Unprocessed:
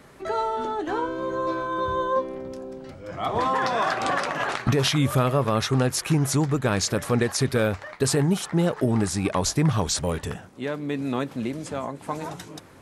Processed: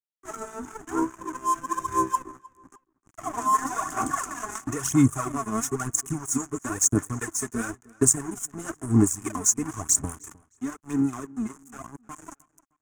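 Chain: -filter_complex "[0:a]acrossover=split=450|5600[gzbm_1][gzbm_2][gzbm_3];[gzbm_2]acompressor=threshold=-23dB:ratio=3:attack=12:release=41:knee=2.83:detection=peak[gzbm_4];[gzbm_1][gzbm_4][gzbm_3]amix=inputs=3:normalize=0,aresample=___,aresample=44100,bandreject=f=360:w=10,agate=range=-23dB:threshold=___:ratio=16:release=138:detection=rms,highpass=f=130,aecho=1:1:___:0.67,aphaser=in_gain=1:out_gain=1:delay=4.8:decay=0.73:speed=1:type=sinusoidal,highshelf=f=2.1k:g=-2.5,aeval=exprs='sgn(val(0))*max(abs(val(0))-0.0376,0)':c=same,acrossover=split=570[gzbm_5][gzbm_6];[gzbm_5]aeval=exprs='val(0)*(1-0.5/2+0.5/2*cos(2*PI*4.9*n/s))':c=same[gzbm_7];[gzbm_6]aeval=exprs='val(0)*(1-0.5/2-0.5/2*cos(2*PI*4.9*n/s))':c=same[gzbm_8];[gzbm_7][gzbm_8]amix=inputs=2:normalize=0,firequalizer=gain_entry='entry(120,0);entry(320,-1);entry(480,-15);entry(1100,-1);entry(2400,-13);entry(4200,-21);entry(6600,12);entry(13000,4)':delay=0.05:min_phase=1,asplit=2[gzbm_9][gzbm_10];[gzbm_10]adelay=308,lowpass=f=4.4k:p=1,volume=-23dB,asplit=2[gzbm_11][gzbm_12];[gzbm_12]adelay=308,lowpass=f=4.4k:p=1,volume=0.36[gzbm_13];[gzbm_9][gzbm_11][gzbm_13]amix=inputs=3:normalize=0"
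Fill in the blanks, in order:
22050, -37dB, 2.8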